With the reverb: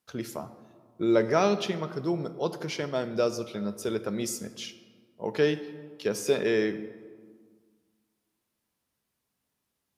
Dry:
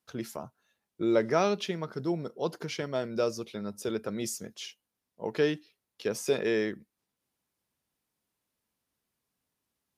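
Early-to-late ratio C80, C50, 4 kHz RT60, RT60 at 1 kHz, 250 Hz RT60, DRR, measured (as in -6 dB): 14.0 dB, 13.0 dB, 0.95 s, 1.8 s, 2.3 s, 10.5 dB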